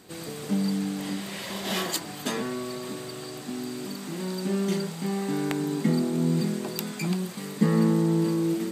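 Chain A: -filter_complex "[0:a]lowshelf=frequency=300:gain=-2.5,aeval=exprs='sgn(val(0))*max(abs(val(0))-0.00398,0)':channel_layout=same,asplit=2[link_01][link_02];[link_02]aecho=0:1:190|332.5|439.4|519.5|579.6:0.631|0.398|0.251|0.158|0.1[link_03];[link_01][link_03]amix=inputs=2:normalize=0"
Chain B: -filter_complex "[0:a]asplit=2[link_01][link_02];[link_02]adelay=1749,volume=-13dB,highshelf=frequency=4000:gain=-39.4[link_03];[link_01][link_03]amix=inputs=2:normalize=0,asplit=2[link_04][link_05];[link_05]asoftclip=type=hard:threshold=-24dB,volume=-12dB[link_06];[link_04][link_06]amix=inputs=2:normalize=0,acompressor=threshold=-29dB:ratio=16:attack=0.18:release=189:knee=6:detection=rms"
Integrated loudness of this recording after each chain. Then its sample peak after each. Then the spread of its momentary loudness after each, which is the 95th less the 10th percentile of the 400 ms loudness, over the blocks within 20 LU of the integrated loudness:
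−27.5, −36.5 LKFS; −6.0, −25.0 dBFS; 12, 3 LU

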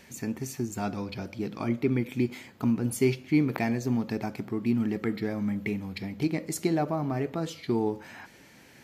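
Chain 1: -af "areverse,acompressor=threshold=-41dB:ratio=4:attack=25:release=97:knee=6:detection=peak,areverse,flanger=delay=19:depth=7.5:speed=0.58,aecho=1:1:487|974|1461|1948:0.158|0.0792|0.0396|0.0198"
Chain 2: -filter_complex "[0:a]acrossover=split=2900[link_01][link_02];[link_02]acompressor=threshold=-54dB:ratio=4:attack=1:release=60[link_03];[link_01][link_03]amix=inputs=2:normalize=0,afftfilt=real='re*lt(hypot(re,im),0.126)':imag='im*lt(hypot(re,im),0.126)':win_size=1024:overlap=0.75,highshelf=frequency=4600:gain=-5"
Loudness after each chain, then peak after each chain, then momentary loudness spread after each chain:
−43.0, −40.5 LKFS; −23.5, −13.0 dBFS; 3, 5 LU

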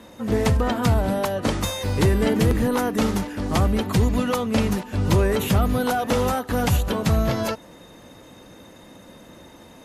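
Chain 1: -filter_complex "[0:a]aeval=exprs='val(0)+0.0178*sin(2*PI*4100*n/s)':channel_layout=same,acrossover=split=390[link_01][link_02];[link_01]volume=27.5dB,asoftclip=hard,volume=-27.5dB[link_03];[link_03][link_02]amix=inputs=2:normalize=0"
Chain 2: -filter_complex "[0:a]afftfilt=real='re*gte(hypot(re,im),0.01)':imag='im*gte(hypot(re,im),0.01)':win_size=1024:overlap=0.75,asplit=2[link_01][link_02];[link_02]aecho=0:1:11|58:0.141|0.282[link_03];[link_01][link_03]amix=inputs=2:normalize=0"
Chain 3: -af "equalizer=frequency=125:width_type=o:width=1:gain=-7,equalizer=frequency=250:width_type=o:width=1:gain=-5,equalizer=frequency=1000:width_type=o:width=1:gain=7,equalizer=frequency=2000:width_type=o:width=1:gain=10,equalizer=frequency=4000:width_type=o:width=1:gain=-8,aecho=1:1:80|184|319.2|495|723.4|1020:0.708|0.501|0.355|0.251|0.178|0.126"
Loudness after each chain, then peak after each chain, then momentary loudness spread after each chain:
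−26.0, −22.0, −18.5 LKFS; −9.0, −7.5, −3.5 dBFS; 11, 5, 8 LU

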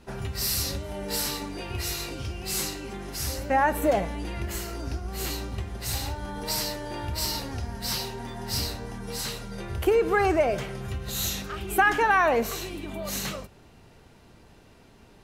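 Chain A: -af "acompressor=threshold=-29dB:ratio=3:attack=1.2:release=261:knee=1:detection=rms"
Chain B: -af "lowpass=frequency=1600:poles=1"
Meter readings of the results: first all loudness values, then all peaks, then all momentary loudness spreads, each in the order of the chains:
−34.5, −30.0 LKFS; −21.0, −11.0 dBFS; 5, 14 LU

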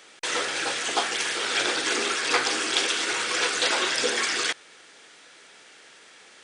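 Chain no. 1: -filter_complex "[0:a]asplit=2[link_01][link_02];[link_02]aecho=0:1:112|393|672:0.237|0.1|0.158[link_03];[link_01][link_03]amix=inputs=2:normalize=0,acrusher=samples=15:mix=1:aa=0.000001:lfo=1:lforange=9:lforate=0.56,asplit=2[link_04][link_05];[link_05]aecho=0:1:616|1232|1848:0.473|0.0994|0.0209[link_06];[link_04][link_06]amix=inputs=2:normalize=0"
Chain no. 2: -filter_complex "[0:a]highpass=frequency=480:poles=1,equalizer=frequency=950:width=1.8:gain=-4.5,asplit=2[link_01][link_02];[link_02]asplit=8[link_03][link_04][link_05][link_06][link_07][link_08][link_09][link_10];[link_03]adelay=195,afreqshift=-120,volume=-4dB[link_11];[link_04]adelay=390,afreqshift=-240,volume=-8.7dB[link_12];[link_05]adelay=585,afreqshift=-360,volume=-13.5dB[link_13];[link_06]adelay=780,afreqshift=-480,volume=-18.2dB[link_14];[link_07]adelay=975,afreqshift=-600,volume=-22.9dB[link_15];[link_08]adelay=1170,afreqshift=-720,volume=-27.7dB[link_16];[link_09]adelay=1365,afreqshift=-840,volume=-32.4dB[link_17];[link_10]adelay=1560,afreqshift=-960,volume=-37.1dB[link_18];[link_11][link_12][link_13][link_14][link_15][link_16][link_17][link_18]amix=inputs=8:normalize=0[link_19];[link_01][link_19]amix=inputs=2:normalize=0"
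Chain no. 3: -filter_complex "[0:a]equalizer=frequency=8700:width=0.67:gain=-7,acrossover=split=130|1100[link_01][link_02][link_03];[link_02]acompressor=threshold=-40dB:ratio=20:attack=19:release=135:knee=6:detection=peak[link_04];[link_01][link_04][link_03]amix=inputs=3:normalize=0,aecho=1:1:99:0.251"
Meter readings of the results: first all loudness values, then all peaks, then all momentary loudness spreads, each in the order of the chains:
−25.0, −23.0, −26.5 LKFS; −8.0, −7.0, −8.0 dBFS; 13, 10, 4 LU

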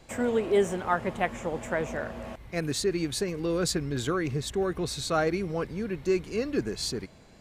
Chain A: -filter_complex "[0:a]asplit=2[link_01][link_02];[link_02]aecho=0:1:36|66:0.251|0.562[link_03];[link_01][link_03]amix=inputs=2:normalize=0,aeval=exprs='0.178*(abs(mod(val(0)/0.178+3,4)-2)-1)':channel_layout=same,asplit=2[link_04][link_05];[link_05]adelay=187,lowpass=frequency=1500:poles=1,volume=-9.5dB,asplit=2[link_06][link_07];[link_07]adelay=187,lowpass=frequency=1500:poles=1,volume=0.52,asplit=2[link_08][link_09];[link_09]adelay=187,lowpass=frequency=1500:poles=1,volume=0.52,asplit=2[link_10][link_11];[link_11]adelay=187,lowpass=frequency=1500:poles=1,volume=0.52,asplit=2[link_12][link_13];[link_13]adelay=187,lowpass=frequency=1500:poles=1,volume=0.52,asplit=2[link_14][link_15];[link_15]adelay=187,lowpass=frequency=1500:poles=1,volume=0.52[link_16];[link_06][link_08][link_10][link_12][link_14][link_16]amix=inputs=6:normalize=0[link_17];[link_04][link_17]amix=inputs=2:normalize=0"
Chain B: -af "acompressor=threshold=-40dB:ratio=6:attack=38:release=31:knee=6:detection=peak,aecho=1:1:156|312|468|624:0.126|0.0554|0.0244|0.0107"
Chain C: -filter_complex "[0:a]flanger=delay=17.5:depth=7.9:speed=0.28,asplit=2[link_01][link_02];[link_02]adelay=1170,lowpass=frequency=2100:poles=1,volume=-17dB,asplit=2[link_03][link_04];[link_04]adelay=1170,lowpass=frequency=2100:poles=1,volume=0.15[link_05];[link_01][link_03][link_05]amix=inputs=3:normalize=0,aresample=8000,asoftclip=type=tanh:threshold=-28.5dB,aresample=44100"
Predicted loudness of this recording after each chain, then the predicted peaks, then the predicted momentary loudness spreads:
−27.5, −37.0, −36.0 LKFS; −13.5, −21.5, −25.5 dBFS; 7, 3, 5 LU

